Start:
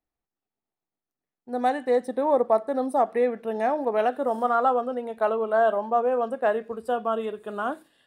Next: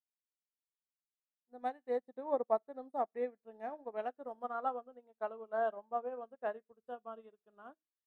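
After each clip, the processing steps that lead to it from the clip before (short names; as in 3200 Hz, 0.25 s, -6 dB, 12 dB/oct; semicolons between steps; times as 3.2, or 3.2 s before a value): high shelf 4400 Hz -11 dB; upward expander 2.5:1, over -42 dBFS; gain -9 dB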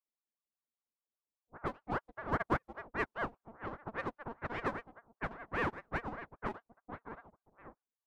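half-wave gain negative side -12 dB; low-pass opened by the level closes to 590 Hz, open at -34.5 dBFS; ring modulator with a swept carrier 700 Hz, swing 70%, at 5 Hz; gain +4.5 dB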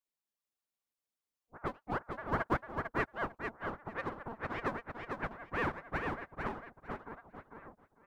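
short-mantissa float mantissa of 6-bit; on a send: feedback echo 0.449 s, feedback 18%, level -5 dB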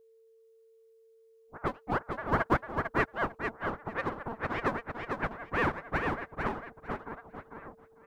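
whine 450 Hz -64 dBFS; gain +5.5 dB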